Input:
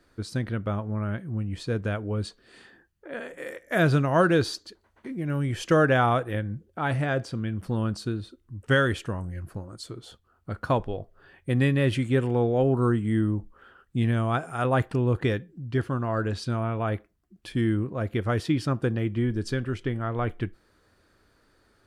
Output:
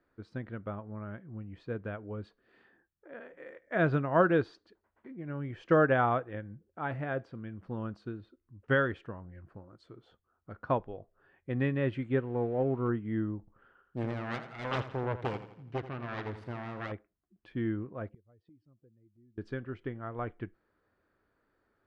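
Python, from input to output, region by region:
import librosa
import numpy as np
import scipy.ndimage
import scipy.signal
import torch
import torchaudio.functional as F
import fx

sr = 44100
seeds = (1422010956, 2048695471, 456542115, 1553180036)

y = fx.chain(x, sr, fx.crossing_spikes(level_db=-25.0),
    fx.air_absorb(metres=470.0), at=(12.22, 12.89))
y = fx.chain(y, sr, fx.self_delay(depth_ms=1.0),
    fx.echo_feedback(ms=84, feedback_pct=47, wet_db=-9.5), at=(13.39, 16.92))
y = fx.chain(y, sr, fx.spec_expand(power=1.7),
    fx.peak_eq(hz=1400.0, db=-8.5, octaves=0.49),
    fx.gate_flip(shuts_db=-27.0, range_db=-25), at=(18.09, 19.38))
y = scipy.signal.sosfilt(scipy.signal.butter(2, 2000.0, 'lowpass', fs=sr, output='sos'), y)
y = fx.low_shelf(y, sr, hz=140.0, db=-7.5)
y = fx.upward_expand(y, sr, threshold_db=-33.0, expansion=1.5)
y = F.gain(torch.from_numpy(y), -2.0).numpy()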